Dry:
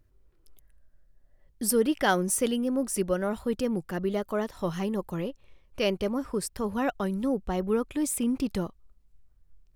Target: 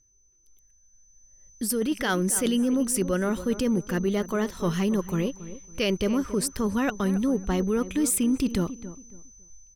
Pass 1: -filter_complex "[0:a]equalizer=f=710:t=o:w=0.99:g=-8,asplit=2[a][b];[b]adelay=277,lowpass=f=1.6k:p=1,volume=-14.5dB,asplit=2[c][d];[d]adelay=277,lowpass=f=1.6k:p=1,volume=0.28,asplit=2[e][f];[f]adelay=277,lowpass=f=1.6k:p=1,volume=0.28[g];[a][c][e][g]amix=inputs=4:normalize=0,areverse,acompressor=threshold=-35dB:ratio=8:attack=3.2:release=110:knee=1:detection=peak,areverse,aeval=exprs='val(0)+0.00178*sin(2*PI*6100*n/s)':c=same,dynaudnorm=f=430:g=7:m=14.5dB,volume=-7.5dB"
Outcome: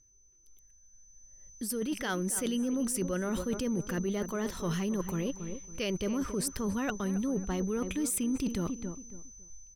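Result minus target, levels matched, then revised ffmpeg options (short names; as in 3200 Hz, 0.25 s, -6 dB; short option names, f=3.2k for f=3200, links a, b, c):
compressor: peak gain reduction +8.5 dB
-filter_complex "[0:a]equalizer=f=710:t=o:w=0.99:g=-8,asplit=2[a][b];[b]adelay=277,lowpass=f=1.6k:p=1,volume=-14.5dB,asplit=2[c][d];[d]adelay=277,lowpass=f=1.6k:p=1,volume=0.28,asplit=2[e][f];[f]adelay=277,lowpass=f=1.6k:p=1,volume=0.28[g];[a][c][e][g]amix=inputs=4:normalize=0,areverse,acompressor=threshold=-25.5dB:ratio=8:attack=3.2:release=110:knee=1:detection=peak,areverse,aeval=exprs='val(0)+0.00178*sin(2*PI*6100*n/s)':c=same,dynaudnorm=f=430:g=7:m=14.5dB,volume=-7.5dB"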